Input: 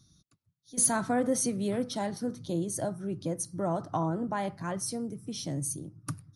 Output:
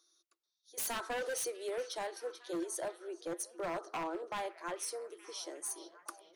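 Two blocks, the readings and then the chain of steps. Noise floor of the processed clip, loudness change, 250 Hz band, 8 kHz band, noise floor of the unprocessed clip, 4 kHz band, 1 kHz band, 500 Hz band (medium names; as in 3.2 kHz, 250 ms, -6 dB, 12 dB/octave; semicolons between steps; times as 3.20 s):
-85 dBFS, -8.5 dB, -14.5 dB, -9.0 dB, -71 dBFS, -3.0 dB, -6.5 dB, -5.5 dB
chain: rippled Chebyshev high-pass 330 Hz, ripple 3 dB; wavefolder -29.5 dBFS; repeats whose band climbs or falls 435 ms, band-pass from 3.7 kHz, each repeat -0.7 oct, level -10.5 dB; trim -2 dB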